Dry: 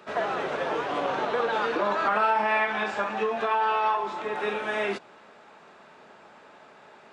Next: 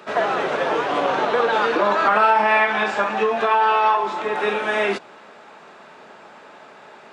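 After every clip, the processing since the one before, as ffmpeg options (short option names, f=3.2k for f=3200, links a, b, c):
-af "highpass=f=130:p=1,volume=7.5dB"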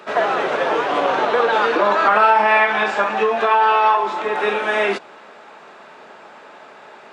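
-af "bass=f=250:g=-5,treble=f=4k:g=-2,volume=2.5dB"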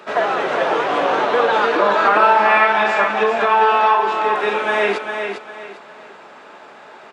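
-af "aecho=1:1:401|802|1203|1604:0.501|0.15|0.0451|0.0135"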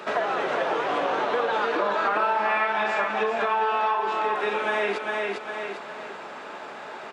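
-af "acompressor=threshold=-30dB:ratio=2.5,volume=2.5dB"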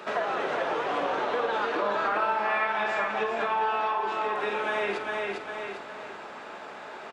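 -filter_complex "[0:a]asplit=2[a][b];[b]adelay=49,volume=-11dB[c];[a][c]amix=inputs=2:normalize=0,asplit=6[d][e][f][g][h][i];[e]adelay=84,afreqshift=-64,volume=-18dB[j];[f]adelay=168,afreqshift=-128,volume=-22.4dB[k];[g]adelay=252,afreqshift=-192,volume=-26.9dB[l];[h]adelay=336,afreqshift=-256,volume=-31.3dB[m];[i]adelay=420,afreqshift=-320,volume=-35.7dB[n];[d][j][k][l][m][n]amix=inputs=6:normalize=0,volume=-3.5dB"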